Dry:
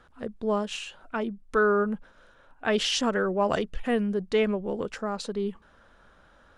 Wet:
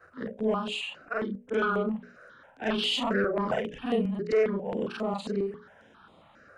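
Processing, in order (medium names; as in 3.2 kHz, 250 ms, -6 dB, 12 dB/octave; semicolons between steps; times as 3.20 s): short-time spectra conjugated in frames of 101 ms; high-pass 140 Hz 12 dB/octave; treble shelf 6.2 kHz -11.5 dB; hum notches 60/120/180/240/300/360/420/480/540/600 Hz; in parallel at 0 dB: compression, threshold -40 dBFS, peak gain reduction 17 dB; on the sum: saturation -19.5 dBFS, distortion -19 dB; stepped phaser 7.4 Hz 910–5700 Hz; trim +4.5 dB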